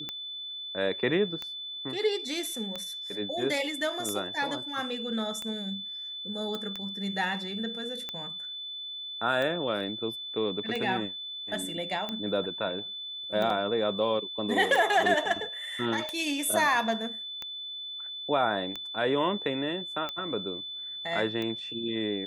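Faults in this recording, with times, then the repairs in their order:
scratch tick 45 rpm −20 dBFS
whistle 3,500 Hz −36 dBFS
0:06.55: click −22 dBFS
0:13.50: drop-out 2.6 ms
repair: click removal
notch filter 3,500 Hz, Q 30
repair the gap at 0:13.50, 2.6 ms

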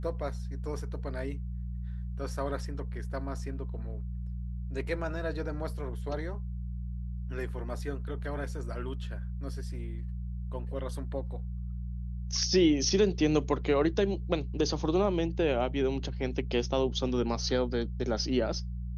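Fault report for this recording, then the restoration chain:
mains hum 60 Hz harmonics 3 −36 dBFS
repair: hum removal 60 Hz, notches 3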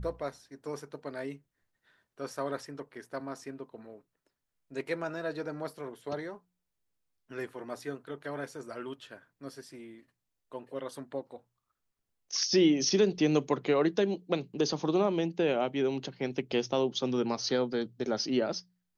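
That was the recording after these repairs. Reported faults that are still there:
none of them is left

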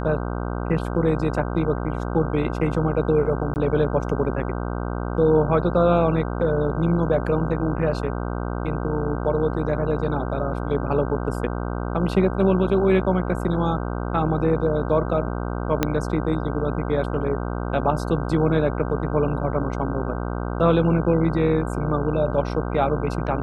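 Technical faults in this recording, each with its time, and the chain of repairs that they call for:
mains buzz 60 Hz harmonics 26 −27 dBFS
0:03.54–0:03.56: drop-out 19 ms
0:15.83: click −5 dBFS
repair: click removal
hum removal 60 Hz, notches 26
repair the gap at 0:03.54, 19 ms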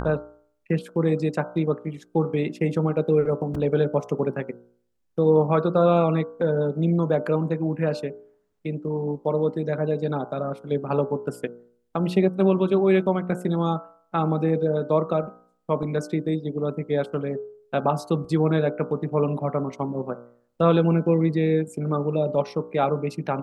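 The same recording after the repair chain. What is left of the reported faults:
0:15.83: click

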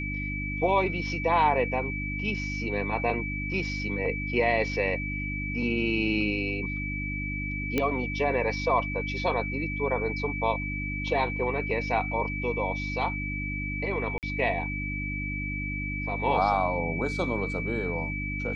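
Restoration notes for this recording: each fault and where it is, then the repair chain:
mains hum 50 Hz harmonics 6 −34 dBFS
whistle 2,300 Hz −33 dBFS
0:07.78: click −12 dBFS
0:14.18–0:14.23: drop-out 48 ms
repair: click removal
hum removal 50 Hz, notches 6
notch filter 2,300 Hz, Q 30
repair the gap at 0:14.18, 48 ms

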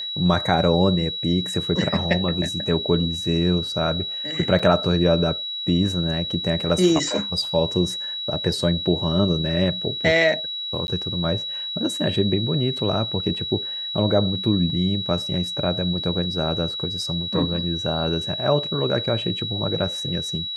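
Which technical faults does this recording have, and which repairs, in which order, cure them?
whistle 3,900 Hz −27 dBFS
0:04.59: drop-out 4.9 ms
0:10.87–0:10.88: drop-out 11 ms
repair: notch filter 3,900 Hz, Q 30
repair the gap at 0:04.59, 4.9 ms
repair the gap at 0:10.87, 11 ms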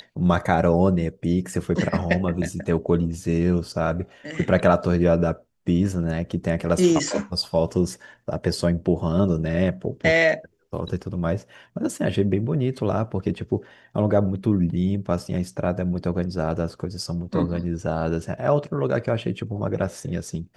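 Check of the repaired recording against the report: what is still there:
none of them is left

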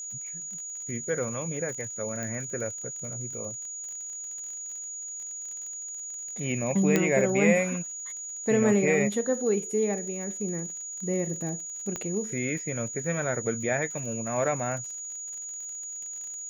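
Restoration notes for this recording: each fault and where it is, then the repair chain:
surface crackle 44 per second −37 dBFS
whistle 6,800 Hz −35 dBFS
0:02.23: click −21 dBFS
0:06.96: click −9 dBFS
0:11.96: click −18 dBFS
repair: click removal
notch filter 6,800 Hz, Q 30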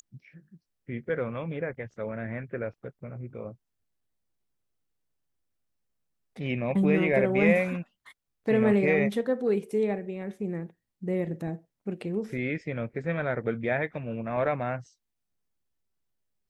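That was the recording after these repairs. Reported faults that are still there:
none of them is left

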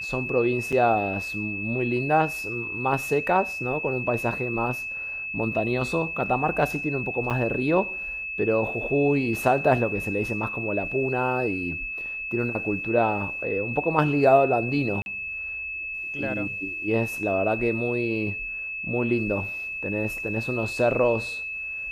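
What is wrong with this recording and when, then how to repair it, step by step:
whistle 2,600 Hz −30 dBFS
0:00.72–0:00.73: drop-out 6 ms
0:07.30–0:07.31: drop-out 7.5 ms
0:15.02–0:15.06: drop-out 41 ms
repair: notch filter 2,600 Hz, Q 30
repair the gap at 0:00.72, 6 ms
repair the gap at 0:07.30, 7.5 ms
repair the gap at 0:15.02, 41 ms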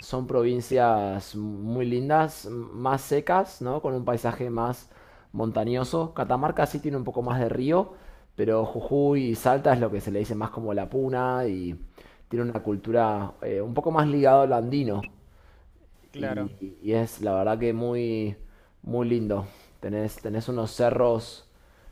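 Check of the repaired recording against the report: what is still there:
none of them is left

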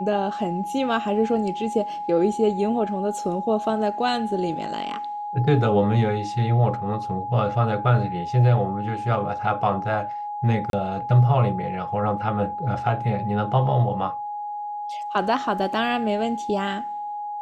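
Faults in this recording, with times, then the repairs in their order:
whistle 830 Hz −28 dBFS
0:10.70–0:10.73: drop-out 32 ms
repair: notch filter 830 Hz, Q 30
repair the gap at 0:10.70, 32 ms

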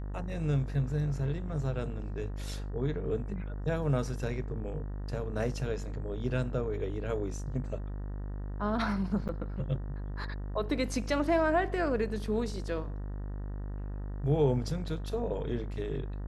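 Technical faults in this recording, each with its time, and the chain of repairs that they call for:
mains buzz 50 Hz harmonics 38 −37 dBFS
0:09.28–0:09.29: drop-out 9 ms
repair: hum removal 50 Hz, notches 38
repair the gap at 0:09.28, 9 ms

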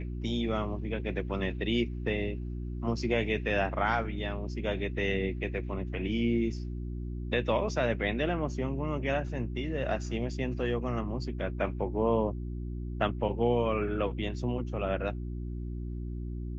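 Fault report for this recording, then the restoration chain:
mains hum 60 Hz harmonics 6 −36 dBFS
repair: hum removal 60 Hz, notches 6

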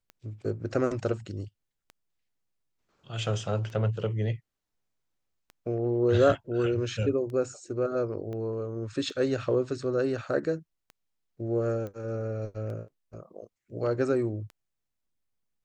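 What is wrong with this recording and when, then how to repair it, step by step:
scratch tick 33 1/3 rpm −30 dBFS
0:08.33: click −28 dBFS
0:11.87: click −27 dBFS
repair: click removal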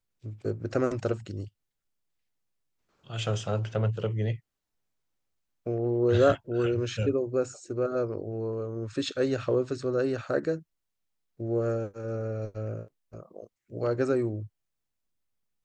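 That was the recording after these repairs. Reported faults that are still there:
0:08.33: click

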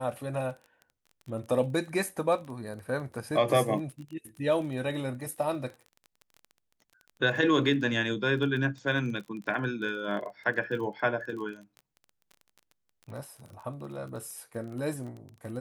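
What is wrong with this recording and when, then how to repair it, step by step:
surface crackle 22 per second −38 dBFS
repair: click removal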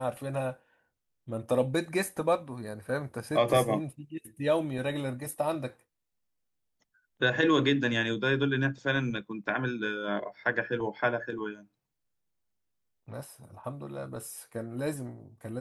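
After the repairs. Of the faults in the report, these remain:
none of them is left

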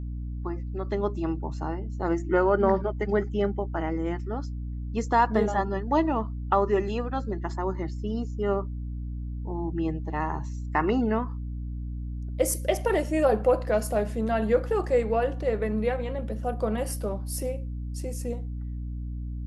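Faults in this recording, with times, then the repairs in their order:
mains hum 60 Hz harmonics 5 −33 dBFS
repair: hum removal 60 Hz, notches 5

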